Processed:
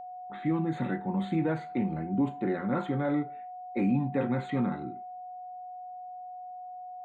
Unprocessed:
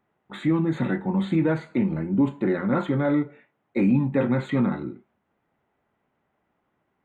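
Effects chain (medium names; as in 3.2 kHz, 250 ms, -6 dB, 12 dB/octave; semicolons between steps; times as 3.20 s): level-controlled noise filter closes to 1.6 kHz, open at -20 dBFS; whistle 730 Hz -33 dBFS; trim -6.5 dB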